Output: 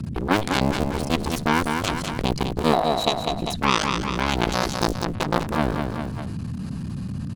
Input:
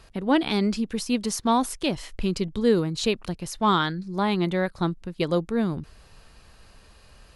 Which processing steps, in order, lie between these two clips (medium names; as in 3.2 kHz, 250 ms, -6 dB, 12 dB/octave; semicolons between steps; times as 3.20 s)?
cycle switcher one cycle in 3, muted; graphic EQ 125/250/1000/8000 Hz +11/+8/+5/+4 dB; Chebyshev shaper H 3 -9 dB, 6 -23 dB, 8 -31 dB, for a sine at -3 dBFS; band-stop 1.9 kHz, Q 29; on a send: feedback delay 199 ms, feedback 31%, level -15 dB; on the sum: band noise 69–230 Hz -59 dBFS; 2.73–3.56 s: small resonant body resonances 700/3900 Hz, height 17 dB, ringing for 25 ms; 4.52–5.05 s: resonant high shelf 3.8 kHz +12 dB, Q 1.5; level flattener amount 70%; trim -2 dB